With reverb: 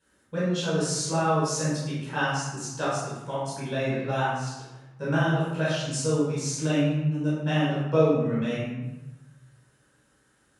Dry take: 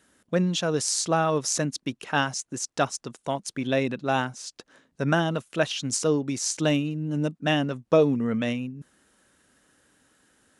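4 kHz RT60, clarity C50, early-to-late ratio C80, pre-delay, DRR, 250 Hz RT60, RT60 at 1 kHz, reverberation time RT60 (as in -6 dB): 0.65 s, -1.5 dB, 2.0 dB, 12 ms, -11.0 dB, 1.4 s, 1.1 s, 1.0 s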